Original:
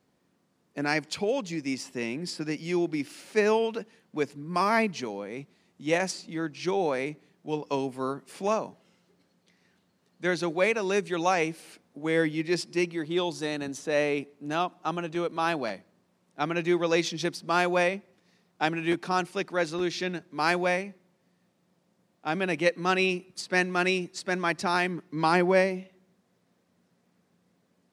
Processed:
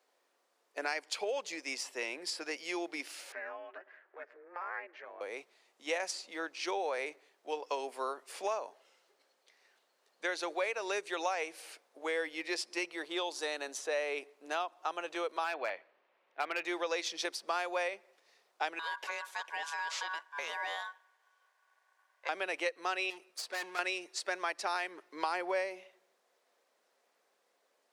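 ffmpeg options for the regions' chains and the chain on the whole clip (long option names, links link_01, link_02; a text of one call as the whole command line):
ffmpeg -i in.wav -filter_complex "[0:a]asettb=1/sr,asplit=3[link_01][link_02][link_03];[link_01]atrim=end=3.324[link_04];[link_02]atrim=start=3.32:end=5.21,asetpts=PTS-STARTPTS,afade=type=in:duration=0.004:curve=qsin,afade=type=out:start_time=1.886:duration=0.004:curve=qsin,aeval=exprs='val(0)*sin(2*PI*170*n/s)':channel_layout=same,acompressor=threshold=-46dB:ratio=3:attack=3.2:release=140:knee=1:detection=peak,lowpass=frequency=1700:width_type=q:width=4.2[link_05];[link_03]atrim=start=5.206[link_06];[link_04][link_05]acrossfade=duration=0.004:curve1=hsin:curve2=qsin[link_07];[link_07][link_06]acrossfade=duration=0.004:curve1=qsin:curve2=hsin,asettb=1/sr,asplit=3[link_08][link_09][link_10];[link_08]atrim=end=15.444[link_11];[link_09]atrim=start=15.44:end=16.65,asetpts=PTS-STARTPTS,afade=type=in:duration=0.004:curve=qsin,afade=type=out:start_time=1.206:duration=0.004:curve=qsin,lowpass=frequency=2500:width_type=q:width=1.7,asoftclip=type=hard:threshold=-19.5dB[link_12];[link_10]atrim=start=16.646[link_13];[link_11][link_12]acrossfade=duration=0.004:curve1=hsin:curve2=qsin[link_14];[link_14][link_13]acrossfade=duration=0.004:curve1=qsin:curve2=hsin,asettb=1/sr,asplit=3[link_15][link_16][link_17];[link_15]atrim=end=18.794[link_18];[link_16]atrim=start=18.79:end=22.29,asetpts=PTS-STARTPTS,afade=type=in:duration=0.004:curve=qsin,afade=type=out:start_time=3.496:duration=0.004:curve=qsin,acompressor=threshold=-29dB:ratio=10:attack=3.2:release=140:knee=1:detection=peak,aeval=exprs='val(0)*sin(2*PI*1300*n/s)':channel_layout=same[link_19];[link_17]atrim=start=22.286[link_20];[link_18][link_19]acrossfade=duration=0.004:curve1=hsin:curve2=qsin[link_21];[link_21][link_20]acrossfade=duration=0.004:curve1=qsin:curve2=hsin,asettb=1/sr,asplit=3[link_22][link_23][link_24];[link_22]atrim=end=23.104[link_25];[link_23]atrim=start=23.1:end=23.79,asetpts=PTS-STARTPTS,afade=type=in:duration=0.004:curve=qsin,afade=type=out:start_time=0.686:duration=0.004:curve=qsin,deesser=0.35,aeval=exprs='(tanh(44.7*val(0)+0.5)-tanh(0.5))/44.7':channel_layout=same[link_26];[link_24]atrim=start=23.786[link_27];[link_25][link_26]acrossfade=duration=0.004:curve1=hsin:curve2=qsin[link_28];[link_28][link_27]acrossfade=duration=0.004:curve1=qsin:curve2=hsin,highpass=frequency=470:width=0.5412,highpass=frequency=470:width=1.3066,acompressor=threshold=-32dB:ratio=4" out.wav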